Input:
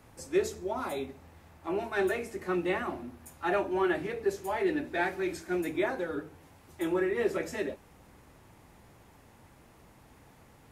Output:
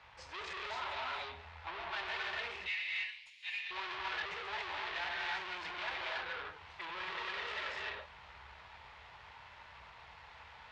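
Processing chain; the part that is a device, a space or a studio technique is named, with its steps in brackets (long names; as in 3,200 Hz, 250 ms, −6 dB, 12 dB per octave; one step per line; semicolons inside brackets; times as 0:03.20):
0:02.40–0:03.71: elliptic high-pass filter 2,100 Hz, stop band 40 dB
reverb whose tail is shaped and stops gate 320 ms rising, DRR −2.5 dB
scooped metal amplifier (tube saturation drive 40 dB, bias 0.45; loudspeaker in its box 77–3,800 Hz, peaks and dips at 99 Hz −9 dB, 140 Hz −9 dB, 210 Hz −8 dB, 940 Hz +6 dB; guitar amp tone stack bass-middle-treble 10-0-10)
level +11 dB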